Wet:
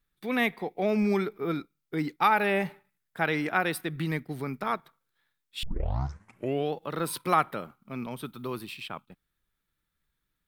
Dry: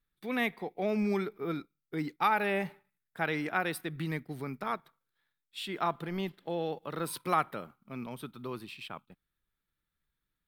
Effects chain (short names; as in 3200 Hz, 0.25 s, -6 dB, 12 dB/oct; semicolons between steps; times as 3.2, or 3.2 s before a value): 5.63 tape start 1.11 s; 8.24–8.81 high shelf 10000 Hz +9.5 dB; gain +4.5 dB